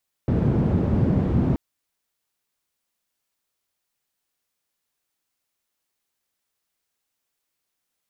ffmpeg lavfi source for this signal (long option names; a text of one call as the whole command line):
ffmpeg -f lavfi -i "anoisesrc=color=white:duration=1.28:sample_rate=44100:seed=1,highpass=frequency=81,lowpass=frequency=170,volume=8dB" out.wav